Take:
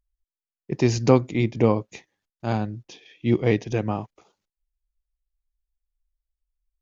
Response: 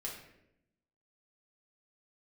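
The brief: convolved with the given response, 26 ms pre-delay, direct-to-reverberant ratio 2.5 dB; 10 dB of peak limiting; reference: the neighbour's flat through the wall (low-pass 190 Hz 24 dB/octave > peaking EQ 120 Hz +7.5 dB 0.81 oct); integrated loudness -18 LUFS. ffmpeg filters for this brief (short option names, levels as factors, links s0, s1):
-filter_complex "[0:a]alimiter=limit=0.251:level=0:latency=1,asplit=2[s0][s1];[1:a]atrim=start_sample=2205,adelay=26[s2];[s1][s2]afir=irnorm=-1:irlink=0,volume=0.794[s3];[s0][s3]amix=inputs=2:normalize=0,lowpass=f=190:w=0.5412,lowpass=f=190:w=1.3066,equalizer=f=120:t=o:w=0.81:g=7.5,volume=1.58"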